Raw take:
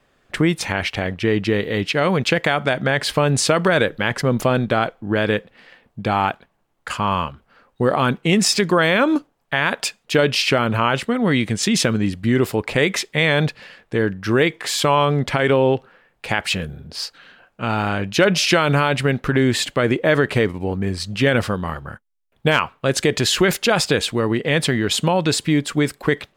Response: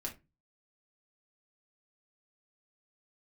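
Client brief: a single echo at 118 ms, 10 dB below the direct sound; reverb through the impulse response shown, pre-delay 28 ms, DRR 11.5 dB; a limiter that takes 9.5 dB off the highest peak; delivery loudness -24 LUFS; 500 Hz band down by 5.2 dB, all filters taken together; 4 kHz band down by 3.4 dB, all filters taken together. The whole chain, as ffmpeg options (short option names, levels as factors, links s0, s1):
-filter_complex "[0:a]equalizer=f=500:t=o:g=-6.5,equalizer=f=4000:t=o:g=-4.5,alimiter=limit=0.188:level=0:latency=1,aecho=1:1:118:0.316,asplit=2[s0][s1];[1:a]atrim=start_sample=2205,adelay=28[s2];[s1][s2]afir=irnorm=-1:irlink=0,volume=0.282[s3];[s0][s3]amix=inputs=2:normalize=0,volume=1.06"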